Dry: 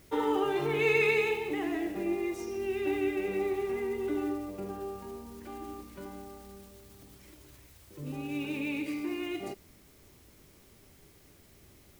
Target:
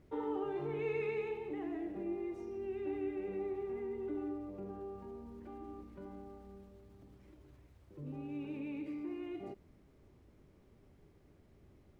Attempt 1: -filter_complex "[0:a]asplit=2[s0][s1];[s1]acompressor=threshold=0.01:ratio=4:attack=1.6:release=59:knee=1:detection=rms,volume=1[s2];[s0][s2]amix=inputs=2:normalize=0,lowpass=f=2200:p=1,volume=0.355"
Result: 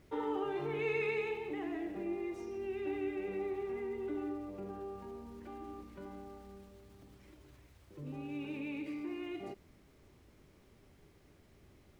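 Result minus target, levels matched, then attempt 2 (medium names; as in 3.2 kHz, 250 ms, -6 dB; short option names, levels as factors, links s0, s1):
2 kHz band +6.0 dB
-filter_complex "[0:a]asplit=2[s0][s1];[s1]acompressor=threshold=0.01:ratio=4:attack=1.6:release=59:knee=1:detection=rms,volume=1[s2];[s0][s2]amix=inputs=2:normalize=0,lowpass=f=700:p=1,volume=0.355"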